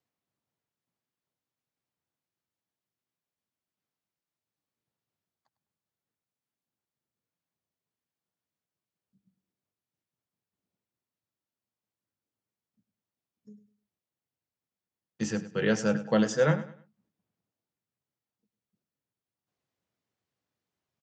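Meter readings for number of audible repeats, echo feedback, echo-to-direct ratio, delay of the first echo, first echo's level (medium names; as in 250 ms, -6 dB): 2, 30%, -14.0 dB, 101 ms, -14.5 dB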